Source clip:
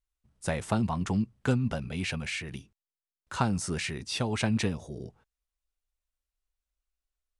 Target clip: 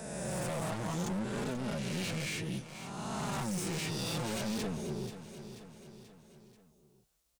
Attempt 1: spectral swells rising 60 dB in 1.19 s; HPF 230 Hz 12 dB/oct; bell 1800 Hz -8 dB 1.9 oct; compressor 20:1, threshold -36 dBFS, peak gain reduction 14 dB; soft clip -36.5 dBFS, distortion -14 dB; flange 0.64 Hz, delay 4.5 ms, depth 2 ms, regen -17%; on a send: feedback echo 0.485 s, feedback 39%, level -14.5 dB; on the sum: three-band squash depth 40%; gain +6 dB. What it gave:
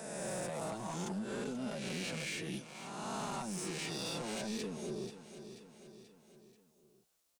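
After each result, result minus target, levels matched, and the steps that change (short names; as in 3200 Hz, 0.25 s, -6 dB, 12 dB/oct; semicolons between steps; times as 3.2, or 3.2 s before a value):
compressor: peak gain reduction +14 dB; 125 Hz band -4.5 dB
remove: compressor 20:1, threshold -36 dBFS, peak gain reduction 14 dB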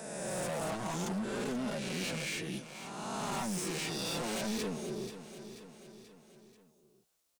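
125 Hz band -5.0 dB
change: HPF 88 Hz 12 dB/oct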